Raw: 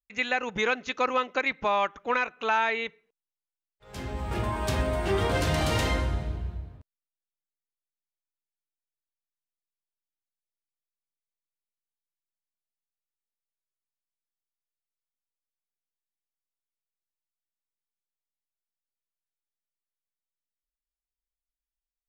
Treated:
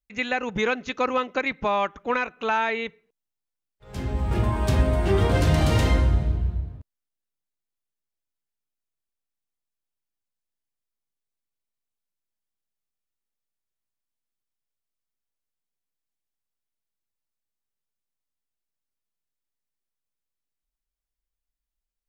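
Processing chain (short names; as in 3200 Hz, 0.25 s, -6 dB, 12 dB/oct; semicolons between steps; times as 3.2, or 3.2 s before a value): low shelf 360 Hz +9 dB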